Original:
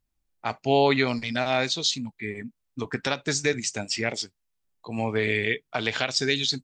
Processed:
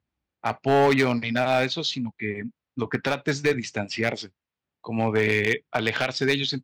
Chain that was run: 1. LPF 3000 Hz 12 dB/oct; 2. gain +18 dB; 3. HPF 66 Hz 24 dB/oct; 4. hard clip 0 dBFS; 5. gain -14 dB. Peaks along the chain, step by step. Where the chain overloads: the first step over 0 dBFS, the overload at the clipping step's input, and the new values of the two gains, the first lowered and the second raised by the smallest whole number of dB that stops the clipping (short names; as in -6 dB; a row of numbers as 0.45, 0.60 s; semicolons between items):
-9.0, +9.0, +8.5, 0.0, -14.0 dBFS; step 2, 8.5 dB; step 2 +9 dB, step 5 -5 dB